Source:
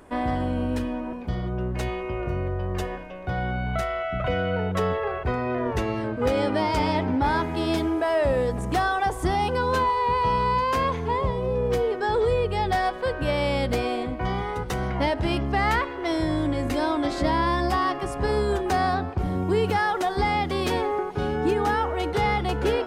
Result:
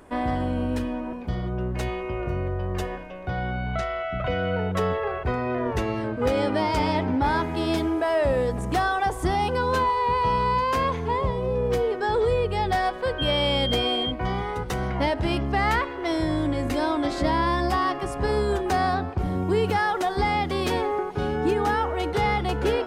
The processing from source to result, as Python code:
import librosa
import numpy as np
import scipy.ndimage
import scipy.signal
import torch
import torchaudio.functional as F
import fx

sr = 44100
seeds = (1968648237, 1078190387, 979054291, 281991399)

y = fx.cheby1_lowpass(x, sr, hz=5700.0, order=2, at=(3.28, 4.41), fade=0.02)
y = fx.dmg_tone(y, sr, hz=3200.0, level_db=-26.0, at=(13.18, 14.1), fade=0.02)